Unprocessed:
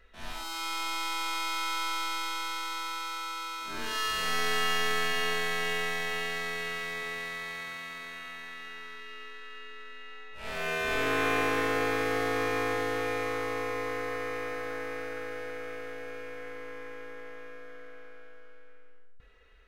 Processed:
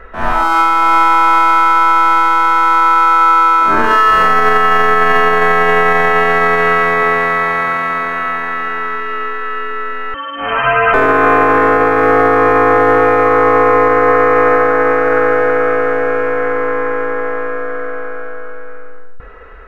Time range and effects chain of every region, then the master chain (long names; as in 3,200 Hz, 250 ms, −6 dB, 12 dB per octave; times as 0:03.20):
0:10.14–0:10.94: hard clipping −28 dBFS + voice inversion scrambler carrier 3,100 Hz + micro pitch shift up and down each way 11 cents
whole clip: drawn EQ curve 130 Hz 0 dB, 1,300 Hz +8 dB, 3,800 Hz −17 dB; boost into a limiter +23.5 dB; level −1 dB